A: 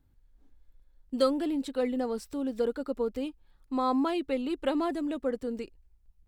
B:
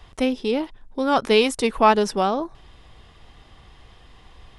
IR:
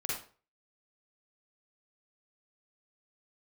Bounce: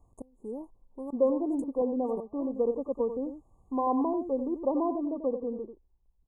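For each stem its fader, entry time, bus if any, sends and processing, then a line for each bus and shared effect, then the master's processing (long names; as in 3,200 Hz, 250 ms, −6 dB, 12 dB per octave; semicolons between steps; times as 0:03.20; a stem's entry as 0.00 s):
+2.5 dB, 0.00 s, no send, echo send −9.5 dB, Gaussian smoothing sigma 4.2 samples; low-shelf EQ 160 Hz −11.5 dB
−14.5 dB, 0.00 s, no send, no echo send, gate with flip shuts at −11 dBFS, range −27 dB; parametric band 1,800 Hz −13 dB 1.2 octaves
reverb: not used
echo: single-tap delay 91 ms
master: linear-phase brick-wall band-stop 1,200–6,400 Hz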